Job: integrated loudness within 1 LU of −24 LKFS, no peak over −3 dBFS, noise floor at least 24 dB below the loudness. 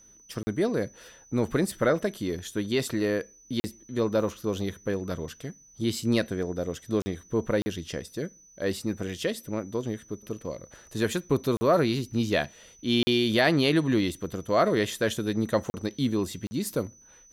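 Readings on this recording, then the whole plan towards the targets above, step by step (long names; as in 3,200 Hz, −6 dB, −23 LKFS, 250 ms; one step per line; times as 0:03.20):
number of dropouts 8; longest dropout 40 ms; interfering tone 6,000 Hz; level of the tone −53 dBFS; integrated loudness −28.0 LKFS; sample peak −9.5 dBFS; target loudness −24.0 LKFS
→ repair the gap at 0:00.43/0:03.60/0:07.02/0:07.62/0:11.57/0:13.03/0:15.70/0:16.47, 40 ms
notch filter 6,000 Hz, Q 30
level +4 dB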